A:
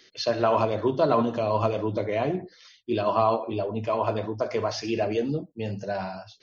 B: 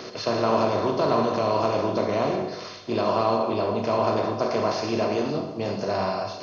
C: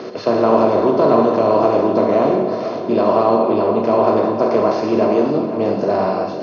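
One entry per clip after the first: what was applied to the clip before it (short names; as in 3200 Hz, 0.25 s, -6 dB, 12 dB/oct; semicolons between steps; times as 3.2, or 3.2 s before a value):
per-bin compression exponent 0.4; Schroeder reverb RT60 1 s, combs from 31 ms, DRR 5.5 dB; gain -5.5 dB
HPF 290 Hz 12 dB/oct; tilt -4 dB/oct; on a send: dark delay 0.507 s, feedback 68%, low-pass 3900 Hz, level -12 dB; on the sum: gain +6 dB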